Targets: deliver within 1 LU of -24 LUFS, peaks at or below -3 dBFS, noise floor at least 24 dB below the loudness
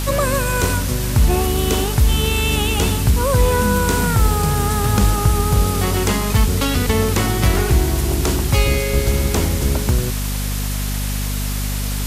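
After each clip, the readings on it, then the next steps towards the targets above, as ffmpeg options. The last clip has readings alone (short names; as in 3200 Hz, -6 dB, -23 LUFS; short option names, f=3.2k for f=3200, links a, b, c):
hum 50 Hz; harmonics up to 250 Hz; hum level -19 dBFS; noise floor -22 dBFS; noise floor target -42 dBFS; loudness -18.0 LUFS; peak -4.0 dBFS; loudness target -24.0 LUFS
-> -af "bandreject=f=50:t=h:w=4,bandreject=f=100:t=h:w=4,bandreject=f=150:t=h:w=4,bandreject=f=200:t=h:w=4,bandreject=f=250:t=h:w=4"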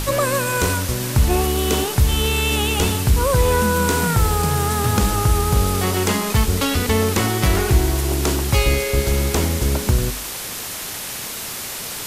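hum none; noise floor -30 dBFS; noise floor target -43 dBFS
-> -af "afftdn=nr=13:nf=-30"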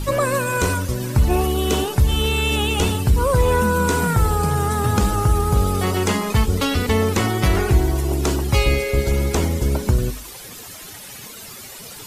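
noise floor -37 dBFS; noise floor target -44 dBFS
-> -af "afftdn=nr=7:nf=-37"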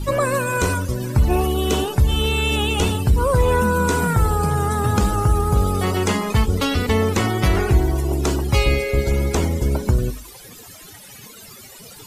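noise floor -41 dBFS; noise floor target -44 dBFS
-> -af "afftdn=nr=6:nf=-41"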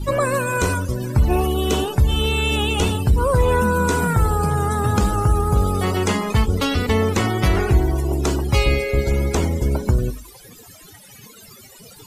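noise floor -44 dBFS; loudness -19.5 LUFS; peak -5.5 dBFS; loudness target -24.0 LUFS
-> -af "volume=-4.5dB"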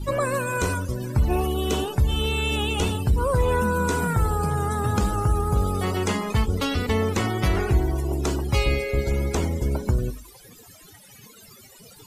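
loudness -24.0 LUFS; peak -10.0 dBFS; noise floor -49 dBFS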